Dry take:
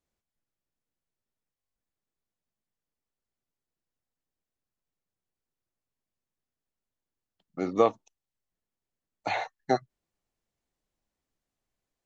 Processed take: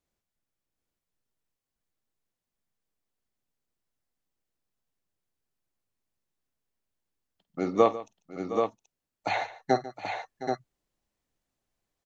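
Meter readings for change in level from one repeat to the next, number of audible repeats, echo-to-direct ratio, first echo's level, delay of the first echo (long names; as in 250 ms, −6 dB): repeats not evenly spaced, 4, −4.5 dB, −16.5 dB, 49 ms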